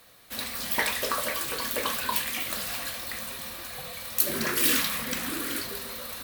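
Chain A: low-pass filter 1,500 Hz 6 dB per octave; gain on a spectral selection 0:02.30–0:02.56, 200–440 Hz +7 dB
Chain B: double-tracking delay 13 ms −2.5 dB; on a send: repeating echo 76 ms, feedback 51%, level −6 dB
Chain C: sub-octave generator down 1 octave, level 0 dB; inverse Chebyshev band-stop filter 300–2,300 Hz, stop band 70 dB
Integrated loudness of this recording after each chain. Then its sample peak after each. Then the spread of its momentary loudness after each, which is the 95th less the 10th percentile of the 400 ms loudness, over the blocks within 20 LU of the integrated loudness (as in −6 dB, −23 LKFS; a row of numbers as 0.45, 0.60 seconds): −35.5, −24.5, −30.5 LKFS; −16.5, −5.5, −4.5 dBFS; 12, 12, 13 LU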